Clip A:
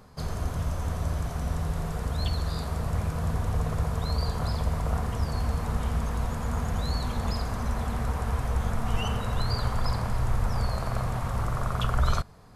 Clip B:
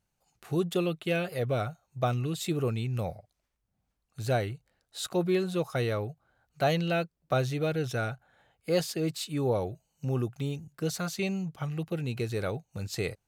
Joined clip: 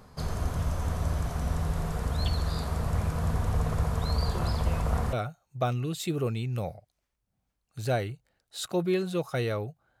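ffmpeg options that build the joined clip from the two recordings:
-filter_complex "[1:a]asplit=2[a][b];[0:a]apad=whole_dur=10,atrim=end=10,atrim=end=5.132[c];[b]atrim=start=1.538:end=6.41[d];[a]atrim=start=0.62:end=1.54,asetpts=PTS-STARTPTS,volume=-15dB,afade=t=in:d=0.004:c=hsin,afade=t=out:st=0.916:d=0.004:c=hsin,adelay=185661S[e];[c][d]acrossfade=d=0.004:c1=hsin:c2=hsin[f];[f][e]amix=inputs=2:normalize=0"

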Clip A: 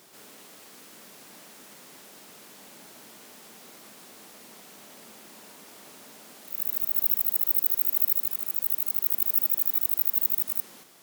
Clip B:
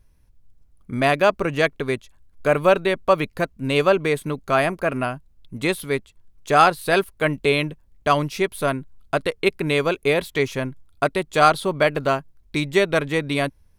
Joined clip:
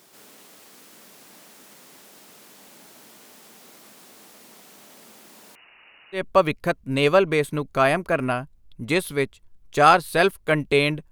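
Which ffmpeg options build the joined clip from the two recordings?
-filter_complex "[0:a]asettb=1/sr,asplit=3[a][b][c];[a]atrim=end=5.554[d];[b]atrim=start=5.55:end=6.24,asetpts=PTS-STARTPTS,afade=t=in:d=0.004:c=qsin,afade=t=out:st=0.686:d=0.004:c=qsin,lowpass=f=2.6k:t=q:w=0.5098,lowpass=f=2.6k:t=q:w=0.6013,lowpass=f=2.6k:t=q:w=0.9,lowpass=f=2.6k:t=q:w=2.563,afreqshift=-3100[e];[c]atrim=start=6.236[f];[d][e]acrossfade=d=0.004:c1=hsin:c2=qsin[g];[g][f]acrossfade=d=0.004:c1=qsin:c2=hsin,apad=whole_dur=11.11,atrim=end=11.11,atrim=end=6.24,asetpts=PTS-STARTPTS[h];[1:a]atrim=start=2.85:end=7.84,asetpts=PTS-STARTPTS[i];[h][i]acrossfade=d=0.12:c1=tri:c2=tri"

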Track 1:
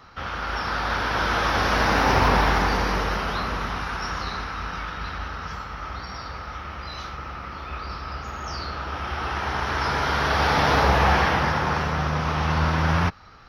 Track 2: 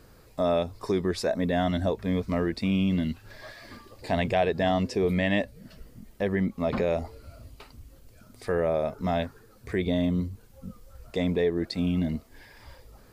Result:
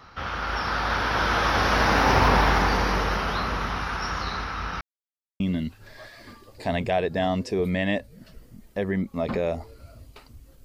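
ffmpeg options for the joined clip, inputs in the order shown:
-filter_complex "[0:a]apad=whole_dur=10.64,atrim=end=10.64,asplit=2[a][b];[a]atrim=end=4.81,asetpts=PTS-STARTPTS,afade=t=out:st=4.806:d=0.004:c=hsin[c];[b]atrim=start=4.81:end=5.4,asetpts=PTS-STARTPTS,volume=0[d];[1:a]atrim=start=2.84:end=8.08,asetpts=PTS-STARTPTS,afade=t=in:d=0.004:c=hsin[e];[c][d][e]concat=n=3:v=0:a=1"

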